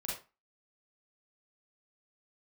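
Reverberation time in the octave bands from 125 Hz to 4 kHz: 0.30, 0.30, 0.30, 0.30, 0.25, 0.25 seconds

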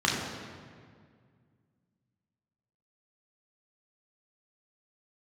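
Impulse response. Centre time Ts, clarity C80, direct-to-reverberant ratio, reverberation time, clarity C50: 82 ms, 3.0 dB, −3.5 dB, 2.0 s, 1.5 dB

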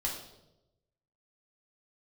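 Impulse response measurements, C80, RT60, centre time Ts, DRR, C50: 8.0 dB, 0.95 s, 34 ms, −3.0 dB, 5.0 dB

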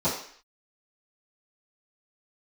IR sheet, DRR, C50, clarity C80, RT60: −15.5 dB, 5.0 dB, 9.0 dB, 0.55 s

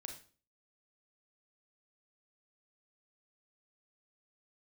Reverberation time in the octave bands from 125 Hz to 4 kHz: 0.50, 0.50, 0.45, 0.40, 0.35, 0.35 seconds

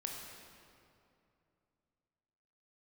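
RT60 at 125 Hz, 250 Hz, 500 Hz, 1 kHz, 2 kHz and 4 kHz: 3.3, 3.1, 2.8, 2.5, 2.1, 1.7 seconds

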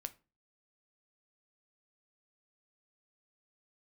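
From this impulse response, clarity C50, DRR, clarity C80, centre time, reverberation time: 19.5 dB, 10.0 dB, 26.0 dB, 3 ms, 0.30 s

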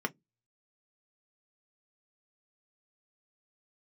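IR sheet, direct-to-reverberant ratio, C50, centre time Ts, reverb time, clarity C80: 4.0 dB, 31.0 dB, 3 ms, 0.15 s, 44.5 dB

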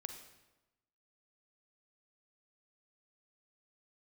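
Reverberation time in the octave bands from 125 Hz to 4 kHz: 1.2, 1.1, 1.1, 1.0, 0.90, 0.80 seconds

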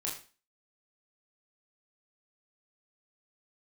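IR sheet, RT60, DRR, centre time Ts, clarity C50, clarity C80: 0.35 s, −3.5 dB, 33 ms, 7.0 dB, 11.0 dB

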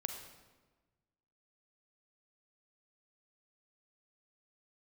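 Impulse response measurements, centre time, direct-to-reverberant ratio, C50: 30 ms, 5.0 dB, 6.0 dB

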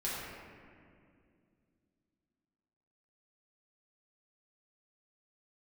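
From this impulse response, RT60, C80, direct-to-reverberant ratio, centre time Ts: 2.3 s, −0.5 dB, −8.5 dB, 130 ms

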